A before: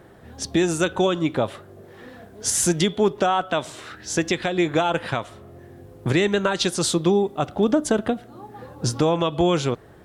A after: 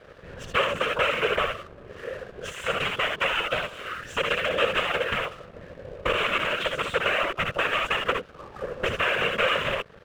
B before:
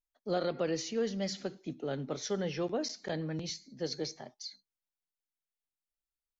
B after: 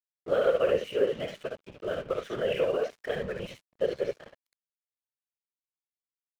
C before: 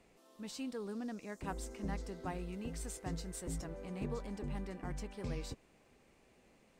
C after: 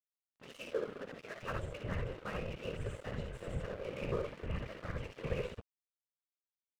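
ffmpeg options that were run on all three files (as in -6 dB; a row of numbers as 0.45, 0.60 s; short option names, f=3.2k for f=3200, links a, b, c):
-filter_complex "[0:a]lowshelf=f=250:g=7.5,aeval=exprs='(mod(4.73*val(0)+1,2)-1)/4.73':c=same,asplit=2[a][b];[b]aecho=0:1:61|74:0.531|0.398[c];[a][c]amix=inputs=2:normalize=0,alimiter=limit=-14dB:level=0:latency=1:release=469,acompressor=threshold=-24dB:ratio=6,firequalizer=gain_entry='entry(100,0);entry(300,-13);entry(500,14);entry(760,-6);entry(1200,12);entry(2000,8);entry(2800,14);entry(4600,-17);entry(7500,-10);entry(12000,-28)':delay=0.05:min_phase=1,afftfilt=real='hypot(re,im)*cos(2*PI*random(0))':imag='hypot(re,im)*sin(2*PI*random(1))':win_size=512:overlap=0.75,aeval=exprs='sgn(val(0))*max(abs(val(0))-0.00299,0)':c=same,volume=2.5dB"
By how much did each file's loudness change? -3.0, +6.0, +1.5 LU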